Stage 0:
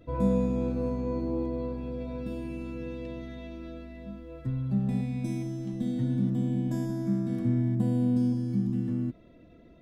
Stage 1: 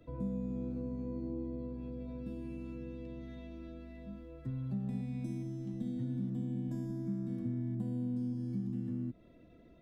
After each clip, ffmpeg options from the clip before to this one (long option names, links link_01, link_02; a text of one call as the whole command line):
ffmpeg -i in.wav -filter_complex "[0:a]acrossover=split=130|370[link_01][link_02][link_03];[link_01]acompressor=threshold=-41dB:ratio=4[link_04];[link_02]acompressor=threshold=-31dB:ratio=4[link_05];[link_03]acompressor=threshold=-50dB:ratio=4[link_06];[link_04][link_05][link_06]amix=inputs=3:normalize=0,volume=-5dB" out.wav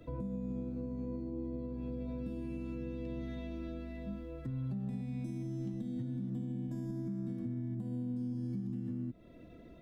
ffmpeg -i in.wav -af "alimiter=level_in=12.5dB:limit=-24dB:level=0:latency=1:release=329,volume=-12.5dB,volume=5.5dB" out.wav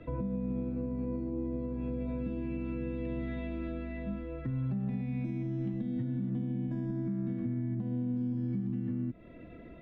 ffmpeg -i in.wav -af "lowpass=frequency=2300:width_type=q:width=1.6,volume=4.5dB" out.wav